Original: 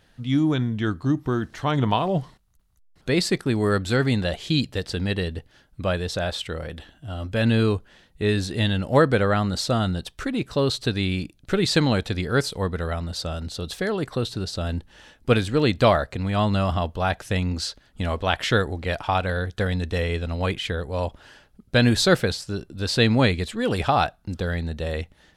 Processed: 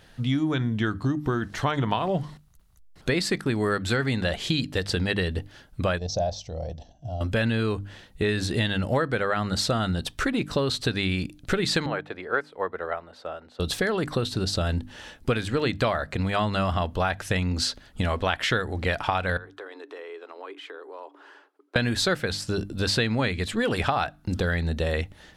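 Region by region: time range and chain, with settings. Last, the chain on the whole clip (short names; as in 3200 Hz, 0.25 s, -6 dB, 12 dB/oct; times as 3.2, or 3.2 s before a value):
5.98–7.21 level quantiser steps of 9 dB + EQ curve 110 Hz 0 dB, 400 Hz -9 dB, 690 Hz +5 dB, 1400 Hz -24 dB, 3600 Hz -13 dB, 6000 Hz +6 dB, 9000 Hz -27 dB, 13000 Hz -19 dB
11.86–13.6 three-band isolator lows -23 dB, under 350 Hz, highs -21 dB, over 2300 Hz + upward expander, over -40 dBFS
19.37–21.76 rippled Chebyshev high-pass 280 Hz, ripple 9 dB + high shelf 3200 Hz -11 dB + compressor 3:1, threshold -46 dBFS
whole clip: notches 50/100/150/200/250/300 Hz; dynamic EQ 1700 Hz, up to +5 dB, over -37 dBFS, Q 1; compressor 6:1, threshold -28 dBFS; gain +6 dB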